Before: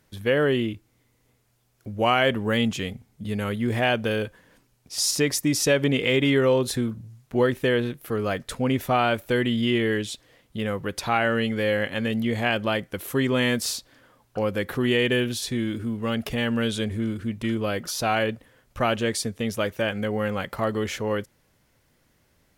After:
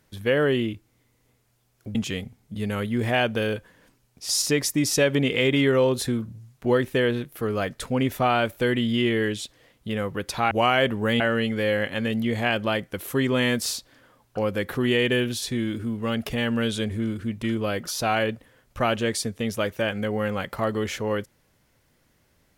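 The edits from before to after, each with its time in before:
1.95–2.64 move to 11.2

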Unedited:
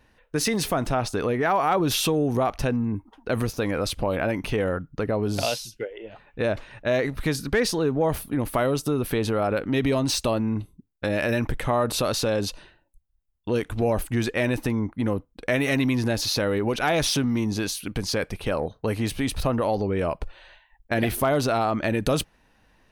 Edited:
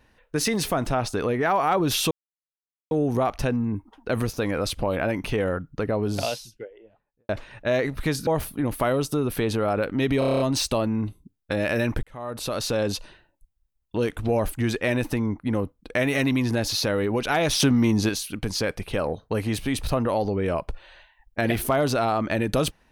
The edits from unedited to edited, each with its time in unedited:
2.11 insert silence 0.80 s
5.17–6.49 studio fade out
7.47–8.01 cut
9.93 stutter 0.03 s, 8 plays
11.56–12.34 fade in
17.13–17.62 gain +4.5 dB

